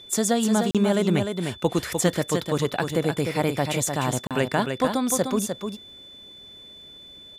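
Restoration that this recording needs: de-click; notch 3500 Hz, Q 30; interpolate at 0.71/4.27, 37 ms; inverse comb 0.302 s -6 dB

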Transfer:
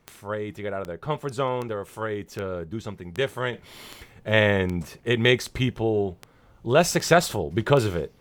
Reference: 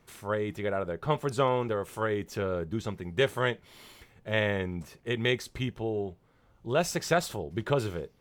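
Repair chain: de-click; gain 0 dB, from 3.53 s -8 dB

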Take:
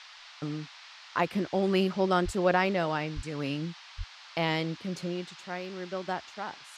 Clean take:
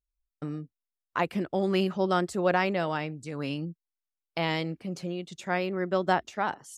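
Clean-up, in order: de-plosive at 2.24/3.15/3.97; noise print and reduce 30 dB; gain correction +8.5 dB, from 5.31

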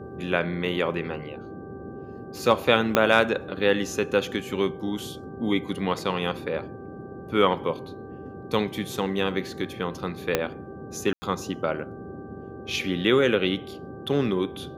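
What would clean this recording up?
de-click; de-hum 390.2 Hz, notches 4; room tone fill 11.13–11.22; noise print and reduce 30 dB

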